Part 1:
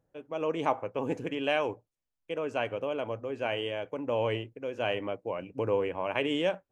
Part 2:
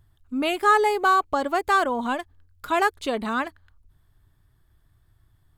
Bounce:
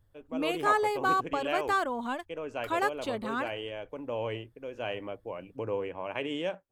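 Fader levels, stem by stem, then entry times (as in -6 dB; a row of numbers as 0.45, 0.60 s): -4.5, -7.5 dB; 0.00, 0.00 s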